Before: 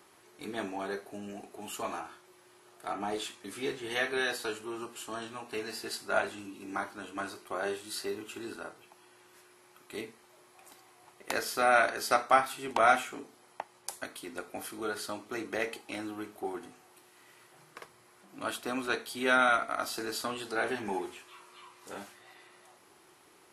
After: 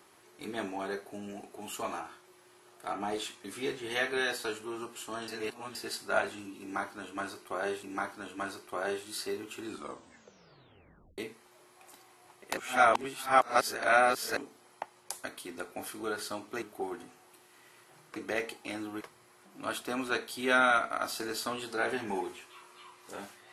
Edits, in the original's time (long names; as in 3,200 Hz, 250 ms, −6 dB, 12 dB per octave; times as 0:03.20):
0:05.28–0:05.75: reverse
0:06.61–0:07.83: repeat, 2 plays
0:08.40: tape stop 1.56 s
0:11.35–0:13.15: reverse
0:15.40–0:16.25: move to 0:17.79